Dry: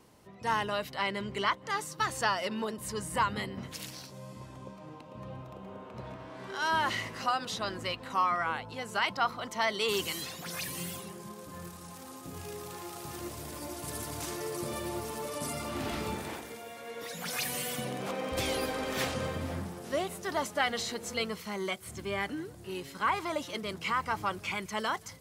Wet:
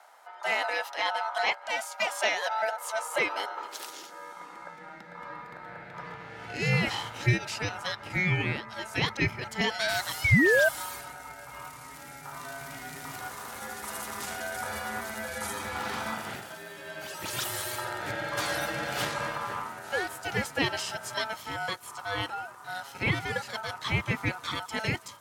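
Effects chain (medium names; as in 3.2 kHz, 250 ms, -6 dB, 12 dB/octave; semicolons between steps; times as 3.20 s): painted sound fall, 10.24–10.69 s, 430–1200 Hz -22 dBFS; ring modulator 1.1 kHz; high-pass sweep 700 Hz -> 110 Hz, 2.48–6.04 s; trim +4 dB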